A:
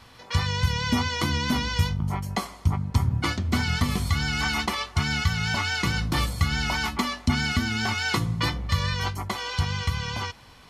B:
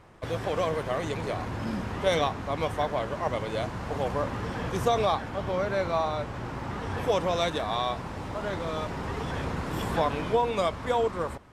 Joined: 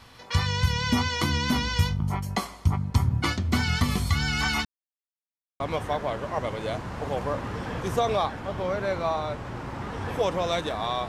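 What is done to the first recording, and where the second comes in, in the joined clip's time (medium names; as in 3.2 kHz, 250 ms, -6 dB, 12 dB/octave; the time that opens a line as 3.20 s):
A
4.65–5.60 s: mute
5.60 s: go over to B from 2.49 s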